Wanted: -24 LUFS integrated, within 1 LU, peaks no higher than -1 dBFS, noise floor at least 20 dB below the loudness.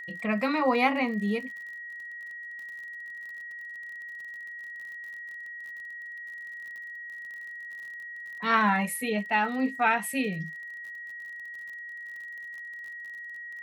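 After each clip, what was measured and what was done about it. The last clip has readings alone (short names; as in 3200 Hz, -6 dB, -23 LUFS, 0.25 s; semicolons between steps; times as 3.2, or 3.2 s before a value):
ticks 45/s; steady tone 1900 Hz; tone level -38 dBFS; loudness -31.5 LUFS; peak -11.0 dBFS; loudness target -24.0 LUFS
-> de-click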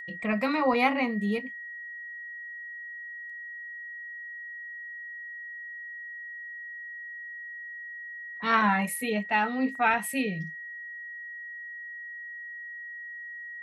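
ticks 0.22/s; steady tone 1900 Hz; tone level -38 dBFS
-> notch 1900 Hz, Q 30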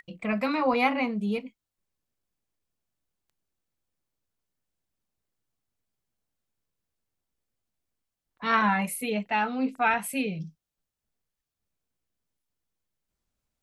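steady tone none; loudness -27.0 LUFS; peak -11.0 dBFS; loudness target -24.0 LUFS
-> gain +3 dB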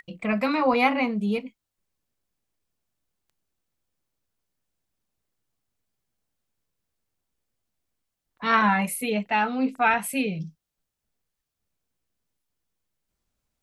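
loudness -24.0 LUFS; peak -8.0 dBFS; noise floor -84 dBFS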